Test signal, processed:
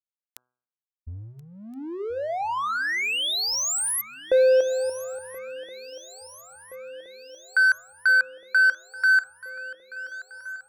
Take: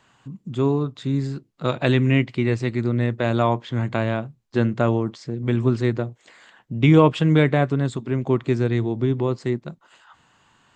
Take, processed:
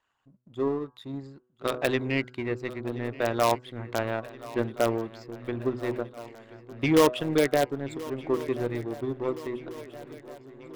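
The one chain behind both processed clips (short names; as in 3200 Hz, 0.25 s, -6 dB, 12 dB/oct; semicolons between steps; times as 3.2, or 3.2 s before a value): formant sharpening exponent 1.5; bell 160 Hz -14.5 dB 1.5 oct; power-law curve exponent 1.4; in parallel at -6 dB: wrapped overs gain 14.5 dB; on the sum: de-hum 124.7 Hz, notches 13; on a send: swung echo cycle 1.371 s, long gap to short 3:1, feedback 62%, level -18.5 dB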